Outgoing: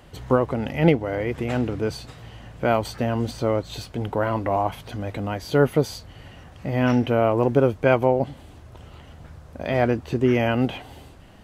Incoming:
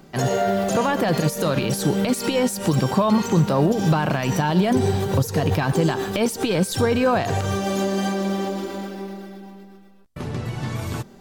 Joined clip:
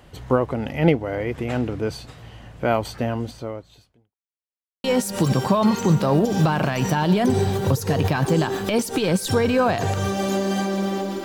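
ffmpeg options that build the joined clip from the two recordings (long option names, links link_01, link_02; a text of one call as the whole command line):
ffmpeg -i cue0.wav -i cue1.wav -filter_complex "[0:a]apad=whole_dur=11.24,atrim=end=11.24,asplit=2[link_01][link_02];[link_01]atrim=end=4.16,asetpts=PTS-STARTPTS,afade=type=out:start_time=3.05:duration=1.11:curve=qua[link_03];[link_02]atrim=start=4.16:end=4.84,asetpts=PTS-STARTPTS,volume=0[link_04];[1:a]atrim=start=2.31:end=8.71,asetpts=PTS-STARTPTS,afade=type=in:duration=0.004:curve=hsin[link_05];[link_03][link_04][link_05]concat=n=3:v=0:a=1" out.wav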